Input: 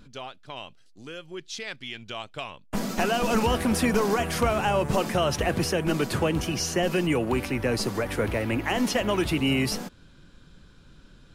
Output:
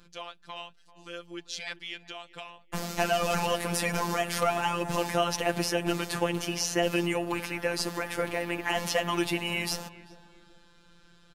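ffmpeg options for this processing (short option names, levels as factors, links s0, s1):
-filter_complex "[0:a]lowshelf=f=290:g=-9.5,asplit=3[s0][s1][s2];[s0]afade=t=out:st=1.97:d=0.02[s3];[s1]acompressor=threshold=0.0112:ratio=2.5,afade=t=in:st=1.97:d=0.02,afade=t=out:st=2.63:d=0.02[s4];[s2]afade=t=in:st=2.63:d=0.02[s5];[s3][s4][s5]amix=inputs=3:normalize=0,afftfilt=real='hypot(re,im)*cos(PI*b)':imag='0':win_size=1024:overlap=0.75,asplit=2[s6][s7];[s7]adelay=390,lowpass=f=1300:p=1,volume=0.158,asplit=2[s8][s9];[s9]adelay=390,lowpass=f=1300:p=1,volume=0.42,asplit=2[s10][s11];[s11]adelay=390,lowpass=f=1300:p=1,volume=0.42,asplit=2[s12][s13];[s13]adelay=390,lowpass=f=1300:p=1,volume=0.42[s14];[s8][s10][s12][s14]amix=inputs=4:normalize=0[s15];[s6][s15]amix=inputs=2:normalize=0,volume=1.33"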